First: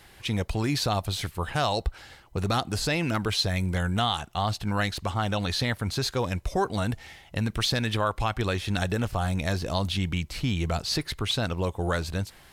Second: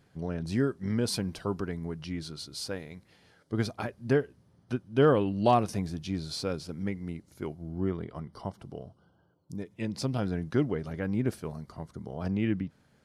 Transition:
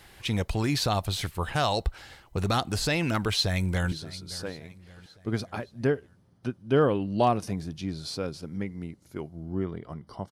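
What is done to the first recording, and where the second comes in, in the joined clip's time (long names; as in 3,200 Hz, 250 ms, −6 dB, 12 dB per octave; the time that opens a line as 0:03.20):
first
0:03.25–0:03.92: delay throw 570 ms, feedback 50%, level −17.5 dB
0:03.92: continue with second from 0:02.18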